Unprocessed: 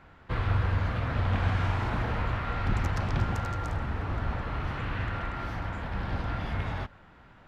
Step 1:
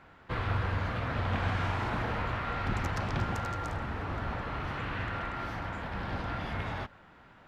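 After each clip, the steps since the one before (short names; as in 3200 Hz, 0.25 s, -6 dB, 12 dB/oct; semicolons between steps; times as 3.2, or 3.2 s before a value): low shelf 110 Hz -9 dB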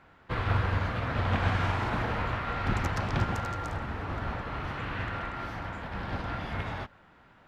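upward expander 1.5:1, over -40 dBFS; gain +4.5 dB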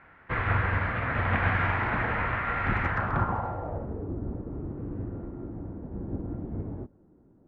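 low-pass sweep 2000 Hz -> 340 Hz, 2.85–4.13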